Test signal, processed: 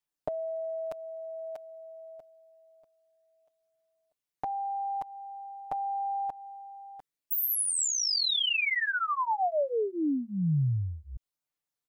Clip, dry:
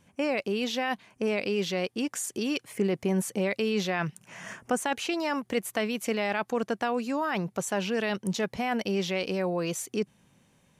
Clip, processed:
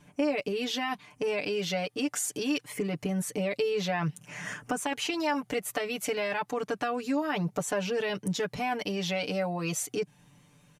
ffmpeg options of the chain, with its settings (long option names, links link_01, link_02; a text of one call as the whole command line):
ffmpeg -i in.wav -af "aphaser=in_gain=1:out_gain=1:delay=1.6:decay=0.24:speed=0.26:type=triangular,acompressor=threshold=-30dB:ratio=3,aecho=1:1:6.8:0.99" out.wav